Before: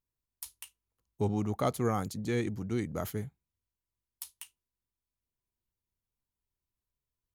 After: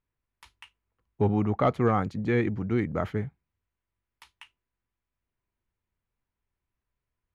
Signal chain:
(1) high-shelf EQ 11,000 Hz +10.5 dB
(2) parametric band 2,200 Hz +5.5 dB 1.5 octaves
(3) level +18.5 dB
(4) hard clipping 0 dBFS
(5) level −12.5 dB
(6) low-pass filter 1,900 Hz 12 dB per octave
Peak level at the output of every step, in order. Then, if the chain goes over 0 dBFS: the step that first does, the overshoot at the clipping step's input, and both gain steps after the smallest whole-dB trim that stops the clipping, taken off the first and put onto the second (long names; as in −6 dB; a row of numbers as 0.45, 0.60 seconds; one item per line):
−15.0, −14.5, +4.0, 0.0, −12.5, −12.0 dBFS
step 3, 4.0 dB
step 3 +14.5 dB, step 5 −8.5 dB